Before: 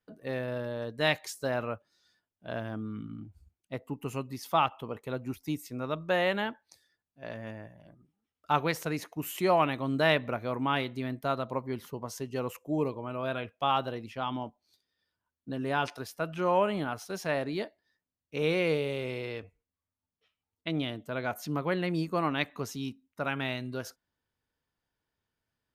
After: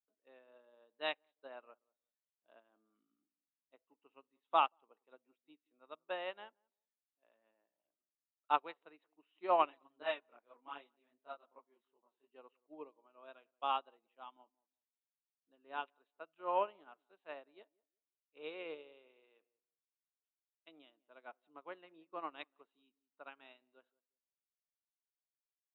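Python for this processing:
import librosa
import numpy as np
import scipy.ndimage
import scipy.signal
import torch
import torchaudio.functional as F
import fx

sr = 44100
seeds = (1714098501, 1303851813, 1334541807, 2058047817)

y = scipy.signal.sosfilt(scipy.signal.cheby1(6, 6, 3900.0, 'lowpass', fs=sr, output='sos'), x)
y = fx.chorus_voices(y, sr, voices=2, hz=1.3, base_ms=23, depth_ms=3.0, mix_pct=55, at=(9.69, 12.28), fade=0.02)
y = scipy.signal.sosfilt(scipy.signal.butter(4, 290.0, 'highpass', fs=sr, output='sos'), y)
y = fx.echo_filtered(y, sr, ms=182, feedback_pct=24, hz=880.0, wet_db=-16.0)
y = fx.upward_expand(y, sr, threshold_db=-43.0, expansion=2.5)
y = F.gain(torch.from_numpy(y), -2.0).numpy()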